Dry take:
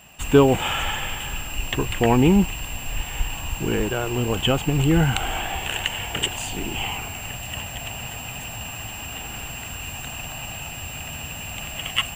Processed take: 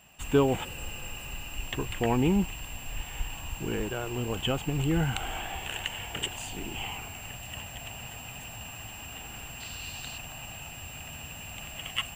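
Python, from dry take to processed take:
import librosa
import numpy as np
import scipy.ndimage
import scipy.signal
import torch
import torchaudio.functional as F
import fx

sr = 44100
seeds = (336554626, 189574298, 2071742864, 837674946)

y = fx.spec_repair(x, sr, seeds[0], start_s=0.67, length_s=0.81, low_hz=560.0, high_hz=7600.0, source='after')
y = fx.peak_eq(y, sr, hz=4300.0, db=14.5, octaves=0.65, at=(9.6, 10.18))
y = y * librosa.db_to_amplitude(-8.5)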